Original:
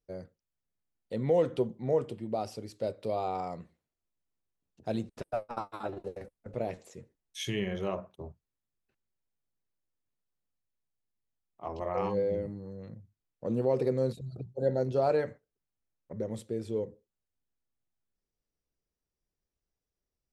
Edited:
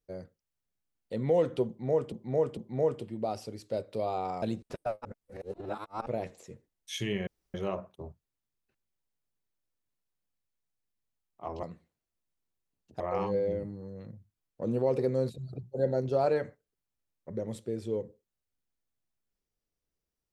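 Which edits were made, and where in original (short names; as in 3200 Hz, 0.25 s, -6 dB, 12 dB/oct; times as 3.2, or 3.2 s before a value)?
1.67–2.12 loop, 3 plays
3.52–4.89 move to 11.83
5.52–6.53 reverse
7.74 insert room tone 0.27 s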